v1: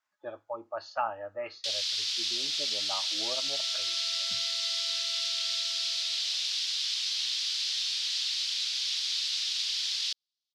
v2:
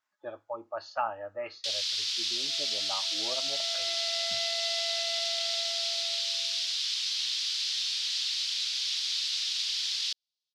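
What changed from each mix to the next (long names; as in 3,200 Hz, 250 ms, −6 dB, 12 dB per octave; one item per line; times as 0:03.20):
second sound: remove resonant band-pass 1,300 Hz, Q 3.6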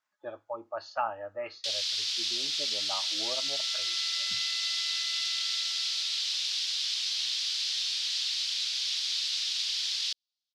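second sound: add Butterworth high-pass 900 Hz 72 dB per octave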